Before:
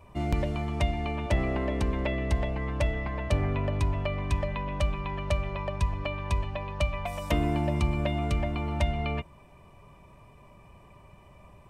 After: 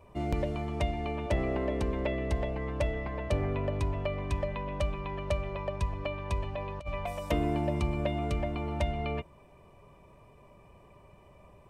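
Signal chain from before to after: bell 460 Hz +6.5 dB 1.1 oct; 6.42–7.13 negative-ratio compressor -29 dBFS, ratio -0.5; gain -4.5 dB

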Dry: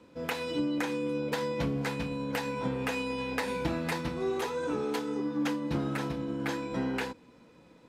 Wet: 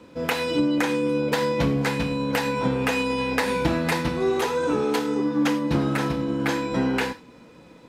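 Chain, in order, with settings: on a send: HPF 1100 Hz + reverb, pre-delay 18 ms, DRR 11.5 dB; on the sum: gain +8.5 dB

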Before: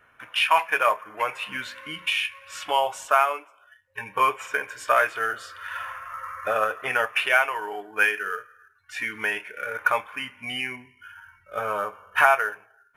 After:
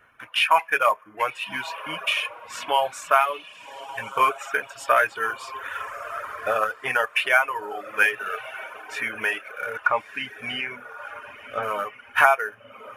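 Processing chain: 9.76–11.63 treble ducked by the level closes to 1800 Hz, closed at -22 dBFS; diffused feedback echo 1.226 s, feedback 48%, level -12.5 dB; reverb removal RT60 0.86 s; gain +1.5 dB

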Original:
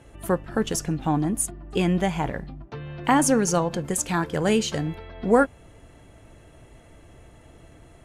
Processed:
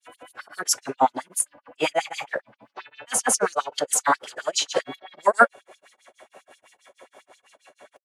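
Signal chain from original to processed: grains 0.167 s, grains 6.2/s, pitch spread up and down by 0 st; LFO high-pass sine 7.5 Hz 510–5600 Hz; formant-preserving pitch shift -3 st; gain +6.5 dB

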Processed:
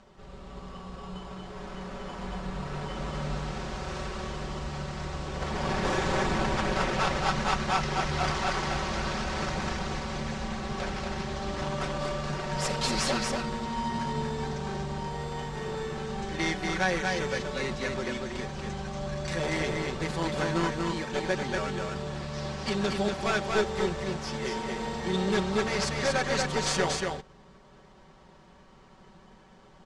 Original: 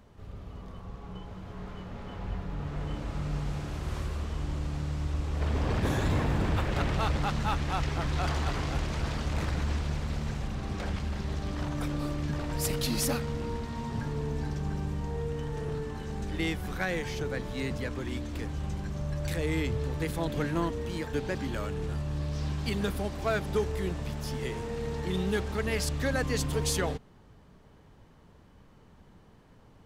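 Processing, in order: one-sided fold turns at -26 dBFS; in parallel at -4.5 dB: sample-rate reducer 4000 Hz, jitter 0%; on the sum: LPF 7600 Hz 24 dB/oct; low shelf 360 Hz -11 dB; comb 5.3 ms; echo 0.236 s -3.5 dB; gain +2 dB

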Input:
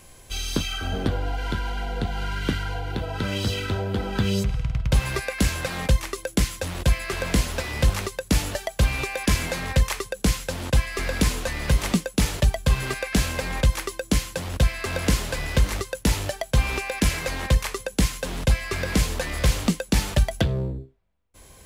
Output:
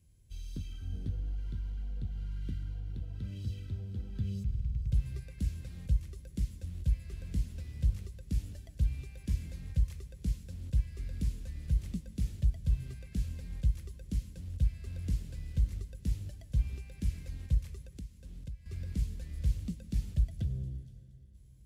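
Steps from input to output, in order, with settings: HPF 58 Hz 12 dB/oct; passive tone stack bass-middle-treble 10-0-1; thin delay 0.471 s, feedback 31%, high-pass 4700 Hz, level -13.5 dB; plate-style reverb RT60 3 s, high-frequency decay 0.9×, pre-delay 85 ms, DRR 12.5 dB; 17.81–18.66 compressor 3:1, threshold -46 dBFS, peak gain reduction 15 dB; low shelf 280 Hz +8.5 dB; gain -5.5 dB

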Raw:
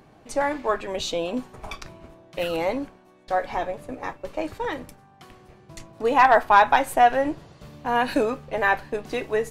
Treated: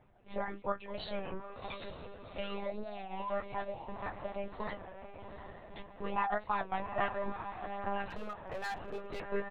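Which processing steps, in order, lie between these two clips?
bin magnitudes rounded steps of 15 dB; dynamic EQ 1300 Hz, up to +4 dB, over -35 dBFS, Q 2.6; 2.43–3.42 painted sound rise 380–1200 Hz -33 dBFS; compressor 2:1, threshold -37 dBFS, peak gain reduction 15 dB; gate -44 dBFS, range -7 dB; reverb removal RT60 1.1 s; doubler 14 ms -10 dB; diffused feedback echo 0.745 s, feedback 49%, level -8 dB; monotone LPC vocoder at 8 kHz 200 Hz; flange 0.28 Hz, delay 7.9 ms, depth 5.3 ms, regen -39%; 8.06–9.2 hard clip -35 dBFS, distortion -15 dB; record warp 33 1/3 rpm, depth 100 cents

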